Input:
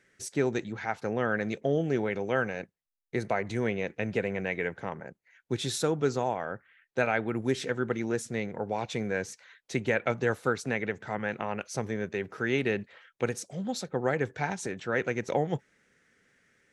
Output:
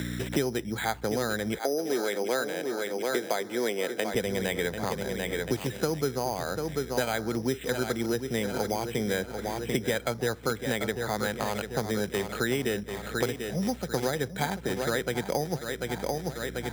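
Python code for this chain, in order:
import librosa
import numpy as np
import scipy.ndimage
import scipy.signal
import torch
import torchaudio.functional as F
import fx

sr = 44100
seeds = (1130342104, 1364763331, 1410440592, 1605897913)

y = fx.echo_feedback(x, sr, ms=741, feedback_pct=43, wet_db=-10.0)
y = fx.add_hum(y, sr, base_hz=60, snr_db=20)
y = np.repeat(scipy.signal.resample_poly(y, 1, 8), 8)[:len(y)]
y = fx.highpass(y, sr, hz=290.0, slope=24, at=(1.58, 4.14))
y = fx.band_squash(y, sr, depth_pct=100)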